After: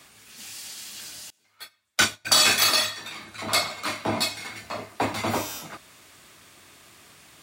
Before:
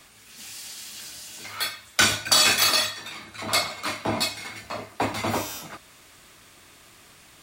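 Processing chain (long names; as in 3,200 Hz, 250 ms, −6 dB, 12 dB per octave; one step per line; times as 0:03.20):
high-pass filter 71 Hz
0:01.30–0:02.25: expander for the loud parts 2.5 to 1, over −34 dBFS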